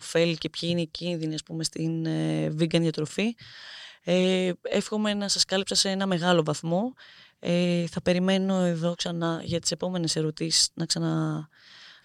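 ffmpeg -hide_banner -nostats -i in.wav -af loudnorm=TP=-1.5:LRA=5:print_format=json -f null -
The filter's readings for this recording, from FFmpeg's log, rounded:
"input_i" : "-26.3",
"input_tp" : "-6.7",
"input_lra" : "2.0",
"input_thresh" : "-36.7",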